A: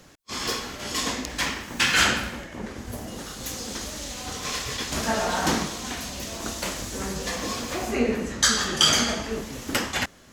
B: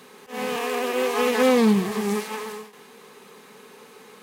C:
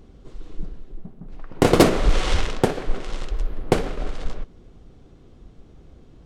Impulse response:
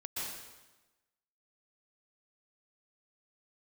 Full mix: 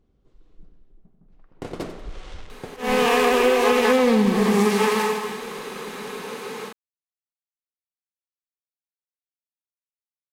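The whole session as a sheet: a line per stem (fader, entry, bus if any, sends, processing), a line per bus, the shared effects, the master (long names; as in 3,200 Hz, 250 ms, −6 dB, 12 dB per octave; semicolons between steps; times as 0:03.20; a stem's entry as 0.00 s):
muted
+2.0 dB, 2.50 s, send −5 dB, no echo send, automatic gain control gain up to 9 dB
−18.0 dB, 0.00 s, no send, echo send −11.5 dB, no processing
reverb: on, RT60 1.1 s, pre-delay 112 ms
echo: repeating echo 92 ms, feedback 33%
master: high-shelf EQ 7,900 Hz −6 dB; downward compressor 10 to 1, threshold −14 dBFS, peak gain reduction 11 dB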